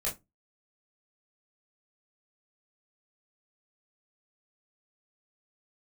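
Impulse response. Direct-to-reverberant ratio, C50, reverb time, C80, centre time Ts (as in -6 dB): -6.0 dB, 13.0 dB, 0.20 s, 23.5 dB, 22 ms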